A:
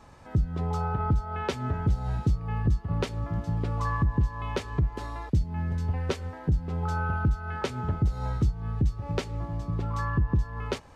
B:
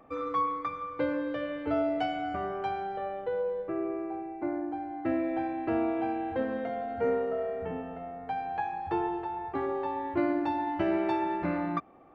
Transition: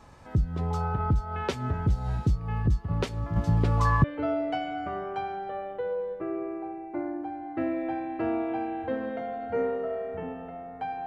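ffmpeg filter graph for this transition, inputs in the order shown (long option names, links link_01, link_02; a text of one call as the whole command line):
ffmpeg -i cue0.wav -i cue1.wav -filter_complex "[0:a]asettb=1/sr,asplit=3[link_01][link_02][link_03];[link_01]atrim=end=3.364[link_04];[link_02]atrim=start=3.36:end=4.04,asetpts=PTS-STARTPTS,afade=type=in:duration=0.004:curve=qsin,afade=type=out:start_time=0.676:duration=0.004:curve=qsin,acontrast=37[link_05];[link_03]atrim=start=4.036[link_06];[link_04][link_05]acrossfade=duration=0.004:curve1=hsin:curve2=qsin[link_07];[link_07][link_06]acrossfade=duration=0.004:curve1=qsin:curve2=hsin,apad=whole_dur=11.06,atrim=end=11.06,atrim=end=4.042[link_08];[1:a]atrim=start=1.518:end=8.54[link_09];[link_08][link_09]acrossfade=duration=0.004:curve1=hsin:curve2=hsin" out.wav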